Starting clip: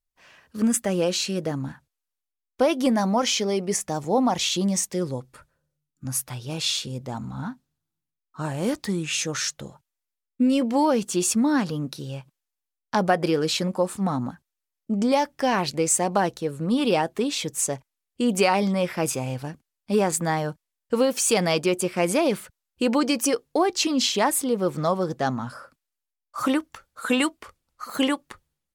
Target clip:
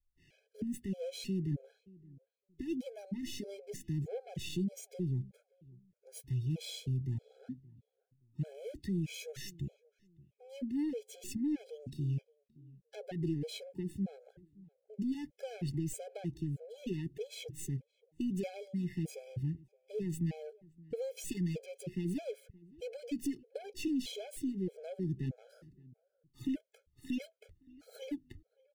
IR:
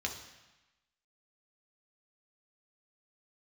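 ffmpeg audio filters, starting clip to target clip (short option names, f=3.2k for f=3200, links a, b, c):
-filter_complex "[0:a]bass=f=250:g=11,treble=f=4k:g=-8,acrossover=split=240|2300[a][b][c];[c]aeval=exprs='max(val(0),0)':c=same[d];[a][b][d]amix=inputs=3:normalize=0,acompressor=threshold=-21dB:ratio=2.5,equalizer=f=220:t=o:w=0.21:g=-14,asoftclip=type=tanh:threshold=-21.5dB,asuperstop=centerf=1100:order=4:qfactor=0.57,asplit=2[e][f];[f]adelay=571,lowpass=f=1.1k:p=1,volume=-22.5dB,asplit=2[g][h];[h]adelay=571,lowpass=f=1.1k:p=1,volume=0.27[i];[g][i]amix=inputs=2:normalize=0[j];[e][j]amix=inputs=2:normalize=0,afftfilt=real='re*gt(sin(2*PI*1.6*pts/sr)*(1-2*mod(floor(b*sr/1024/430),2)),0)':imag='im*gt(sin(2*PI*1.6*pts/sr)*(1-2*mod(floor(b*sr/1024/430),2)),0)':win_size=1024:overlap=0.75,volume=-5.5dB"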